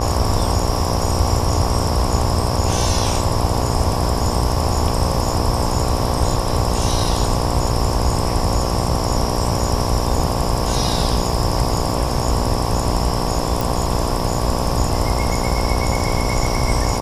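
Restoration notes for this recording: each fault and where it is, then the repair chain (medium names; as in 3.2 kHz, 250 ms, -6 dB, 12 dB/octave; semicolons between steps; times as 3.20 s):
buzz 60 Hz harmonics 19 -23 dBFS
13.61 s: pop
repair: de-click; de-hum 60 Hz, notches 19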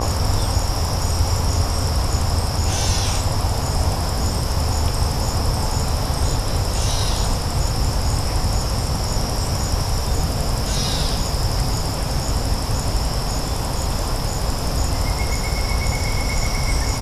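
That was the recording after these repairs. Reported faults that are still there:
nothing left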